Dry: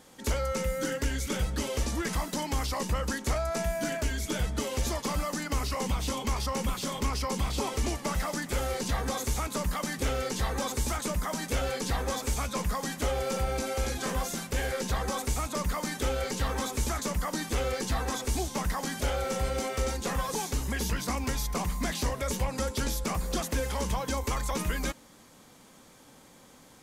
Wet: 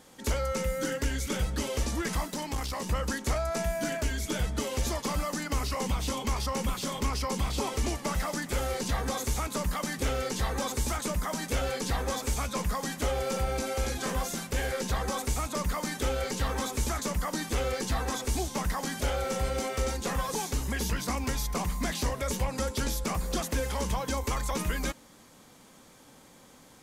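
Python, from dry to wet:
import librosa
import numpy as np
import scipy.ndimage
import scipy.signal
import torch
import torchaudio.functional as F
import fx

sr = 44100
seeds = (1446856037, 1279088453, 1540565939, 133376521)

y = fx.tube_stage(x, sr, drive_db=24.0, bias=0.5, at=(2.27, 2.87))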